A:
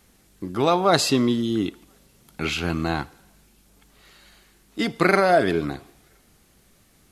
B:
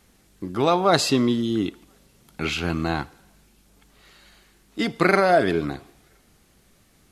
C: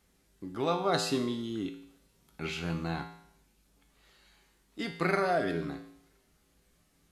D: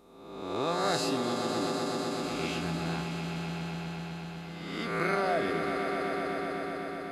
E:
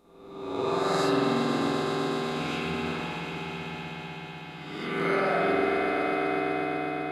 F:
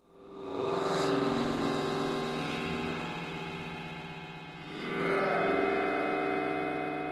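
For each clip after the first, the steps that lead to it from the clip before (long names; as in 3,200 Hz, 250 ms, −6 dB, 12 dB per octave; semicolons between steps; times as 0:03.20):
high-shelf EQ 10,000 Hz −4.5 dB
tuned comb filter 56 Hz, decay 0.67 s, harmonics odd, mix 80%
peak hold with a rise ahead of every peak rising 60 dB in 1.16 s; echo that builds up and dies away 125 ms, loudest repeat 5, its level −9.5 dB; level −3.5 dB
spring reverb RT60 3.3 s, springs 46 ms, chirp 35 ms, DRR −7 dB; level −3.5 dB
level −3.5 dB; Opus 16 kbit/s 48,000 Hz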